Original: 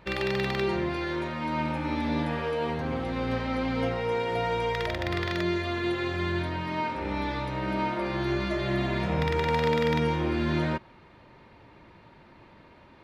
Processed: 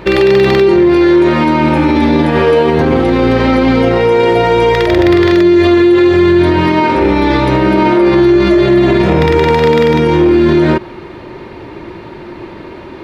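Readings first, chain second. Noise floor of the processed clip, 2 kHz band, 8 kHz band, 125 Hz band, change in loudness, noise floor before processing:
-30 dBFS, +15.0 dB, no reading, +15.0 dB, +19.5 dB, -54 dBFS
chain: peaking EQ 360 Hz +12 dB 0.5 oct; loudness maximiser +21.5 dB; trim -1 dB

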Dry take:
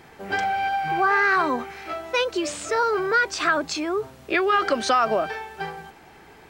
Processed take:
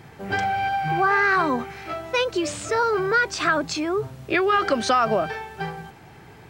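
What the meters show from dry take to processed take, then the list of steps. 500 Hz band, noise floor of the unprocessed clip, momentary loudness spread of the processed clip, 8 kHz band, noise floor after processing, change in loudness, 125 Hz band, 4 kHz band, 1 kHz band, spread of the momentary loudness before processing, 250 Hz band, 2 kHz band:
+1.0 dB, -49 dBFS, 12 LU, 0.0 dB, -46 dBFS, +0.5 dB, +9.0 dB, 0.0 dB, 0.0 dB, 13 LU, +2.0 dB, 0.0 dB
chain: peaking EQ 120 Hz +13.5 dB 1.1 oct

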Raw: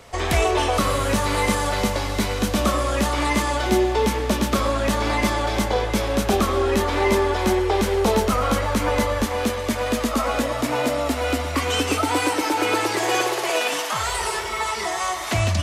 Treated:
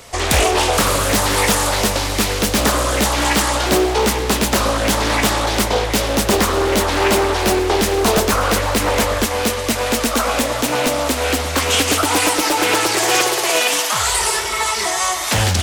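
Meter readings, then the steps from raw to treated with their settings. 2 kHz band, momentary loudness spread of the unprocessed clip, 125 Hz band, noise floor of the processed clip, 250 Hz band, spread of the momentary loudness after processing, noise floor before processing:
+6.0 dB, 4 LU, +3.0 dB, -22 dBFS, +2.5 dB, 3 LU, -27 dBFS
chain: treble shelf 4 kHz +11.5 dB; loudspeaker Doppler distortion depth 0.95 ms; trim +3.5 dB

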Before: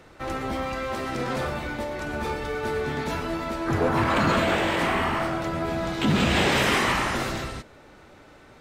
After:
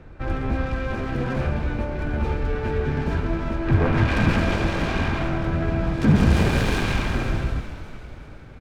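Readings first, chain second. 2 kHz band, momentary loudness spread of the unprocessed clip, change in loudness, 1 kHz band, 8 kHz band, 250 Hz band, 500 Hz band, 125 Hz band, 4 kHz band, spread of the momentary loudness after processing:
-2.0 dB, 10 LU, +1.5 dB, -4.0 dB, -5.5 dB, +3.5 dB, -1.0 dB, +8.5 dB, -5.0 dB, 9 LU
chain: self-modulated delay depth 0.57 ms; RIAA curve playback; small resonant body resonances 1.6/2.4 kHz, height 12 dB, ringing for 55 ms; on a send: frequency-shifting echo 371 ms, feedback 51%, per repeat -45 Hz, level -12.5 dB; on the sum: trim -2 dB

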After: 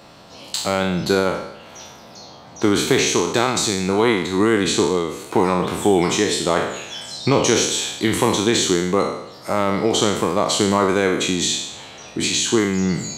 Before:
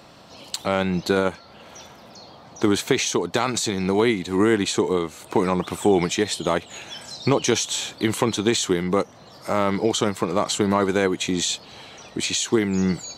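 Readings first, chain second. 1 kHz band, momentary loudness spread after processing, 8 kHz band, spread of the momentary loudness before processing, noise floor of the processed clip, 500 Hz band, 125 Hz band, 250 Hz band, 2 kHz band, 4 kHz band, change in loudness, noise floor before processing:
+4.0 dB, 11 LU, +5.0 dB, 9 LU, -42 dBFS, +3.0 dB, +2.5 dB, +2.5 dB, +4.0 dB, +5.0 dB, +3.5 dB, -47 dBFS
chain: spectral sustain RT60 0.79 s; trim +1 dB

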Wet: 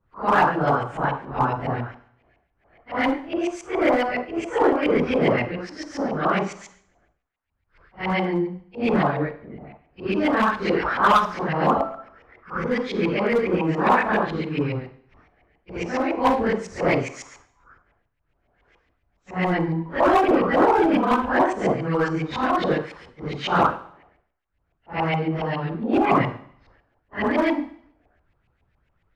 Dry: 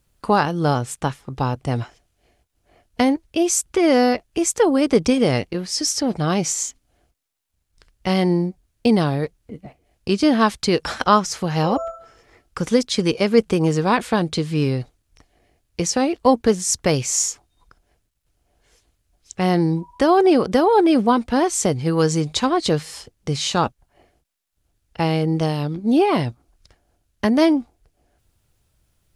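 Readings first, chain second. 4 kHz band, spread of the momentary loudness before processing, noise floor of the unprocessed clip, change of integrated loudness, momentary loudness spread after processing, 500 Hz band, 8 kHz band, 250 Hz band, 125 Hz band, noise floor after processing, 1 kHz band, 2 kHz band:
-8.5 dB, 10 LU, -70 dBFS, -3.0 dB, 14 LU, -2.5 dB, -23.0 dB, -4.5 dB, -5.5 dB, -71 dBFS, +1.0 dB, +3.0 dB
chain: phase randomisation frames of 200 ms; LFO low-pass saw up 7.2 Hz 910–2400 Hz; in parallel at -7 dB: wavefolder -10.5 dBFS; on the sum: harmonic-percussive split harmonic -8 dB; Schroeder reverb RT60 0.65 s, combs from 33 ms, DRR 13 dB; trim -1.5 dB

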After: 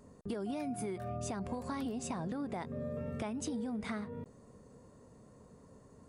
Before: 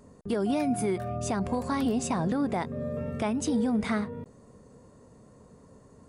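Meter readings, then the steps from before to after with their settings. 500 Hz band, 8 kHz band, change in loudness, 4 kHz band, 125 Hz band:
-9.5 dB, -8.0 dB, -10.0 dB, -9.0 dB, -8.5 dB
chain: compression, threshold -31 dBFS, peak gain reduction 8.5 dB; trim -4 dB

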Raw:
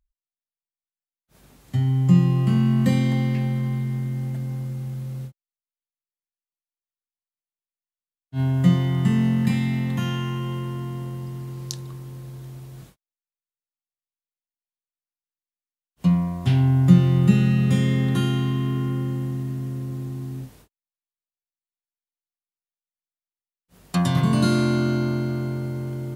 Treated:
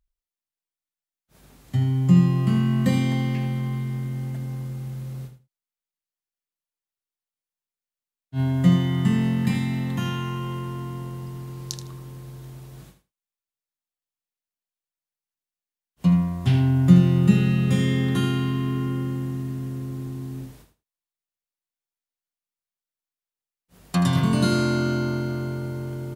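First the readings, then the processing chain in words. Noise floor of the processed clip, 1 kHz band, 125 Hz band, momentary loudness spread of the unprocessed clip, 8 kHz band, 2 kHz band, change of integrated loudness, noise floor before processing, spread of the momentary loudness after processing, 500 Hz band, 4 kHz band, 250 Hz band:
under -85 dBFS, +0.5 dB, -1.5 dB, 16 LU, +0.5 dB, +0.5 dB, -0.5 dB, under -85 dBFS, 17 LU, 0.0 dB, +0.5 dB, -0.5 dB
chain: feedback delay 79 ms, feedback 16%, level -10 dB

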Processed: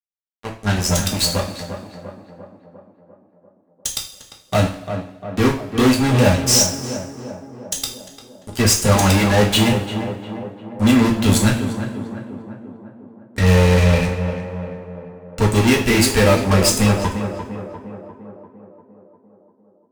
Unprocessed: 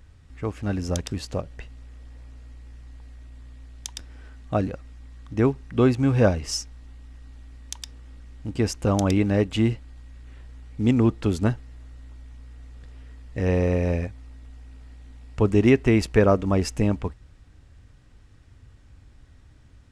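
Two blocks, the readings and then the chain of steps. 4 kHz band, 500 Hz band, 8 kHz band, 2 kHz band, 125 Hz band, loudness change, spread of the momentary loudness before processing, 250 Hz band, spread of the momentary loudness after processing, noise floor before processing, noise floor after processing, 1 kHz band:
+15.5 dB, +4.5 dB, +17.5 dB, +11.5 dB, +6.5 dB, +6.0 dB, 18 LU, +5.5 dB, 20 LU, -52 dBFS, -56 dBFS, +10.5 dB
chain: expander on every frequency bin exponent 1.5; level rider gain up to 10 dB; pre-emphasis filter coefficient 0.9; fuzz box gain 42 dB, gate -43 dBFS; on a send: tape echo 348 ms, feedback 71%, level -6 dB, low-pass 1.4 kHz; on the sum: two-slope reverb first 0.39 s, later 1.5 s, from -16 dB, DRR -1 dB; trim -2 dB

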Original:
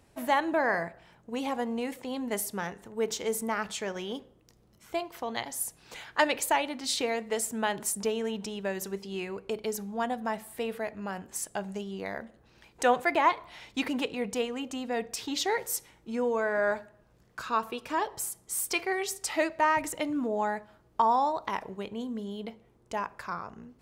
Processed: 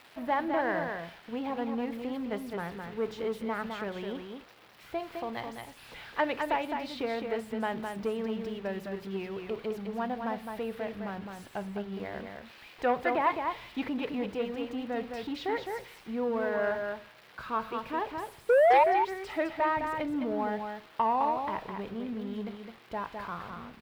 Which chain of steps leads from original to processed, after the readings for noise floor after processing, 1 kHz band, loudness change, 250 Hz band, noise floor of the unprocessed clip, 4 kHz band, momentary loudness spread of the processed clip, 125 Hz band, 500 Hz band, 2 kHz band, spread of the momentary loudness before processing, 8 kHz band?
-55 dBFS, -0.5 dB, -1.0 dB, 0.0 dB, -63 dBFS, -8.0 dB, 12 LU, +1.0 dB, +0.5 dB, -3.5 dB, 12 LU, under -20 dB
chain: zero-crossing glitches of -26 dBFS; bass shelf 120 Hz +6.5 dB; bit crusher 8-bit; painted sound rise, 18.49–18.84 s, 460–960 Hz -16 dBFS; distance through air 400 m; delay 210 ms -5.5 dB; transformer saturation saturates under 960 Hz; trim -1.5 dB

